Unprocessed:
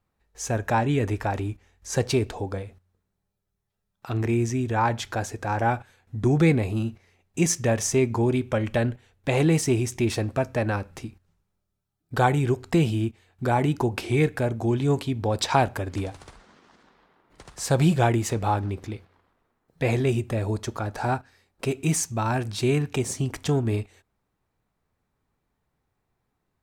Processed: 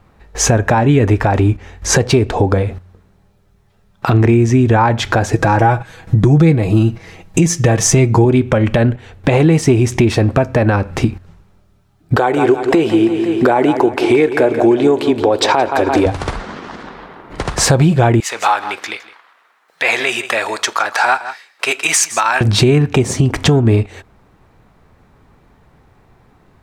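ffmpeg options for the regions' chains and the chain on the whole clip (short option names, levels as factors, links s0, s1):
-filter_complex "[0:a]asettb=1/sr,asplit=3[s0][s1][s2];[s0]atrim=end=5.334[s3];[s1]atrim=start=5.33:end=8.25,asetpts=PTS-STARTPTS,afade=t=in:d=0.004:c=qsin,afade=t=out:st=2.916:d=0.004:c=qsin,bass=f=250:g=3,treble=f=4000:g=5,aecho=1:1:6.2:0.58,atrim=end_sample=128772[s4];[s2]atrim=start=8.246[s5];[s3][s4]acrossfade=d=0.004:c1=hsin:c2=qsin[s6];[s6][s5]acrossfade=d=0.004:c1=qsin:c2=hsin,asettb=1/sr,asplit=3[s7][s8][s9];[s7]atrim=end=12.164[s10];[s8]atrim=start=12.16:end=16.06,asetpts=PTS-STARTPTS,afade=t=in:d=0.004:c=qsin,afade=t=out:st=3.896:d=0.004:c=qsin,deesser=0.3,lowshelf=f=230:t=q:w=1.5:g=-13.5,aecho=1:1:171|342|513|684|855:0.224|0.116|0.0605|0.0315|0.0164,atrim=end_sample=171990[s11];[s9]atrim=start=16.056[s12];[s10][s11]acrossfade=d=0.004:c1=hsin:c2=qsin[s13];[s13][s12]acrossfade=d=0.004:c1=qsin:c2=hsin,asettb=1/sr,asplit=3[s14][s15][s16];[s14]atrim=end=18.204[s17];[s15]atrim=start=18.2:end=22.41,asetpts=PTS-STARTPTS,afade=t=in:d=0.004:c=qsin,afade=t=out:st=4.206:d=0.004:c=qsin,highpass=1400,aecho=1:1:162:0.141,atrim=end_sample=185661[s18];[s16]atrim=start=22.406[s19];[s17][s18]acrossfade=d=0.004:c1=hsin:c2=qsin[s20];[s20][s19]acrossfade=d=0.004:c1=qsin:c2=hsin,lowpass=f=2600:p=1,acompressor=threshold=0.0158:ratio=6,alimiter=level_in=25.1:limit=0.891:release=50:level=0:latency=1,volume=0.891"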